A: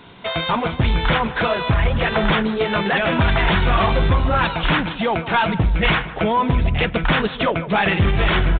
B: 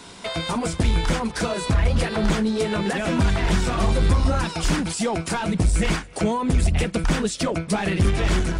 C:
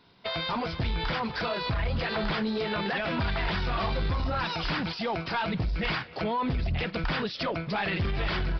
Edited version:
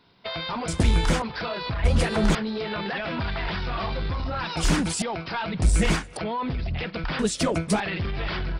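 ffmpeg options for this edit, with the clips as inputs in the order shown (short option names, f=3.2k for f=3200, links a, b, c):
-filter_complex "[1:a]asplit=5[a][b][c][d][e];[2:a]asplit=6[f][g][h][i][j][k];[f]atrim=end=0.682[l];[a]atrim=start=0.678:end=1.222[m];[g]atrim=start=1.218:end=1.842[n];[b]atrim=start=1.838:end=2.352[o];[h]atrim=start=2.348:end=4.572[p];[c]atrim=start=4.568:end=5.022[q];[i]atrim=start=5.018:end=5.622[r];[d]atrim=start=5.618:end=6.172[s];[j]atrim=start=6.168:end=7.192[t];[e]atrim=start=7.188:end=7.802[u];[k]atrim=start=7.798[v];[l][m]acrossfade=d=0.004:c1=hsin:c2=hsin[w];[w][n]acrossfade=d=0.004:c1=hsin:c2=hsin[x];[x][o]acrossfade=d=0.004:c1=hsin:c2=hsin[y];[y][p]acrossfade=d=0.004:c1=hsin:c2=hsin[z];[z][q]acrossfade=d=0.004:c1=hsin:c2=hsin[aa];[aa][r]acrossfade=d=0.004:c1=hsin:c2=hsin[ab];[ab][s]acrossfade=d=0.004:c1=hsin:c2=hsin[ac];[ac][t]acrossfade=d=0.004:c1=hsin:c2=hsin[ad];[ad][u]acrossfade=d=0.004:c1=hsin:c2=hsin[ae];[ae][v]acrossfade=d=0.004:c1=hsin:c2=hsin"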